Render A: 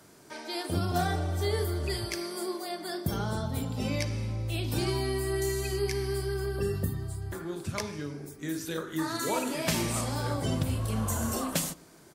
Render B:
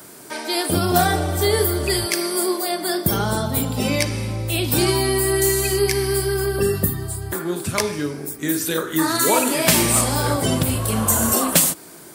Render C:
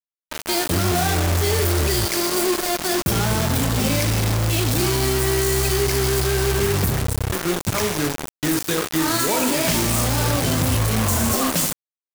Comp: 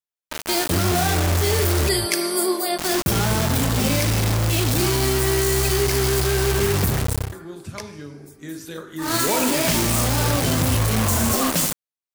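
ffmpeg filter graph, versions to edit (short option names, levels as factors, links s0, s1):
-filter_complex "[2:a]asplit=3[s0][s1][s2];[s0]atrim=end=1.892[s3];[1:a]atrim=start=1.888:end=2.782[s4];[s1]atrim=start=2.778:end=7.34[s5];[0:a]atrim=start=7.18:end=9.15[s6];[s2]atrim=start=8.99[s7];[s3][s4]acrossfade=d=0.004:c1=hsin:c2=hsin[s8];[s8][s5]acrossfade=d=0.004:c1=hsin:c2=hsin[s9];[s9][s6]acrossfade=d=0.16:c1=tri:c2=tri[s10];[s10][s7]acrossfade=d=0.16:c1=tri:c2=tri"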